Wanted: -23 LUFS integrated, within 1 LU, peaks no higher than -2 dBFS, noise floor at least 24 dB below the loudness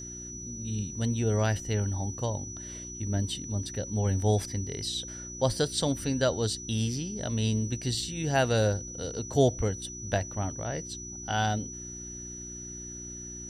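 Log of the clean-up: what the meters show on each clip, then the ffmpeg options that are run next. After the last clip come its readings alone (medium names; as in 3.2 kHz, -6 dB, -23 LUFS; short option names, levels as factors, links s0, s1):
hum 60 Hz; highest harmonic 360 Hz; hum level -44 dBFS; steady tone 5.9 kHz; tone level -40 dBFS; loudness -30.5 LUFS; peak level -12.0 dBFS; loudness target -23.0 LUFS
-> -af "bandreject=f=60:t=h:w=4,bandreject=f=120:t=h:w=4,bandreject=f=180:t=h:w=4,bandreject=f=240:t=h:w=4,bandreject=f=300:t=h:w=4,bandreject=f=360:t=h:w=4"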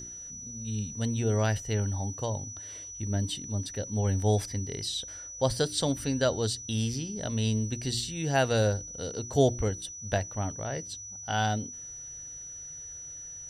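hum not found; steady tone 5.9 kHz; tone level -40 dBFS
-> -af "bandreject=f=5900:w=30"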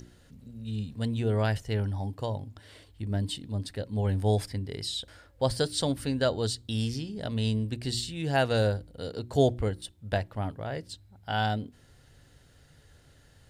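steady tone not found; loudness -30.5 LUFS; peak level -12.0 dBFS; loudness target -23.0 LUFS
-> -af "volume=2.37"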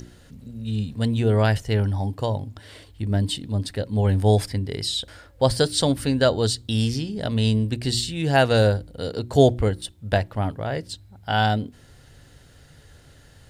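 loudness -23.0 LUFS; peak level -4.5 dBFS; noise floor -51 dBFS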